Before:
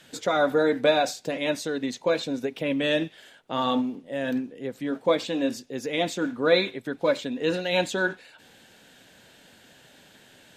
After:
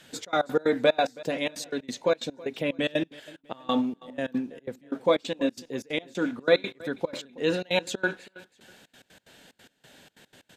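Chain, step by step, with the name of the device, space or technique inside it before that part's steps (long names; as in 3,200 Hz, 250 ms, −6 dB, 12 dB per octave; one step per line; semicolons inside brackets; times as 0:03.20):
trance gate with a delay (gate pattern "xxx.x.x.xxx.x.." 183 BPM −24 dB; repeating echo 324 ms, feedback 33%, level −21 dB)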